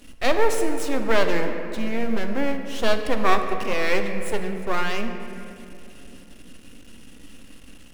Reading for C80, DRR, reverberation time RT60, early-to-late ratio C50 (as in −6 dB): 7.5 dB, 5.5 dB, 2.8 s, 6.5 dB